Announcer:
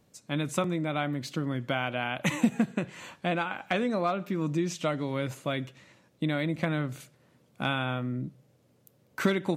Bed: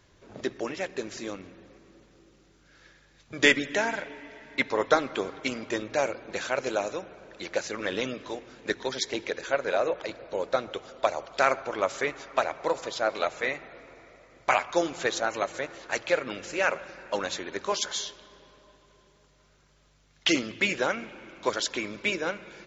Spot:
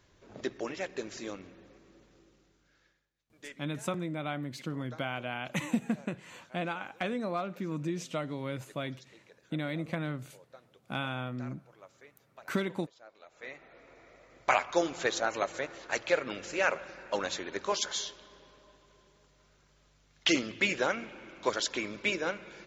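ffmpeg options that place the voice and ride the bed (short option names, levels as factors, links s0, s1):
-filter_complex "[0:a]adelay=3300,volume=0.531[s0];[1:a]volume=11.2,afade=t=out:st=2.17:d=0.94:silence=0.0668344,afade=t=in:st=13.27:d=1.06:silence=0.0562341[s1];[s0][s1]amix=inputs=2:normalize=0"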